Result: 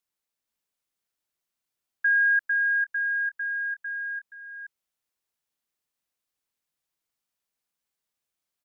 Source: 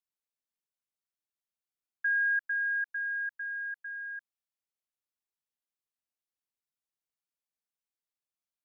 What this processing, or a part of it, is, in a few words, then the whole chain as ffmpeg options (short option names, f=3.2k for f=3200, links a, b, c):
ducked delay: -filter_complex "[0:a]asplit=3[a][b][c];[b]adelay=475,volume=-4dB[d];[c]apad=whole_len=402274[e];[d][e]sidechaincompress=threshold=-49dB:ratio=5:attack=16:release=753[f];[a][f]amix=inputs=2:normalize=0,volume=6.5dB"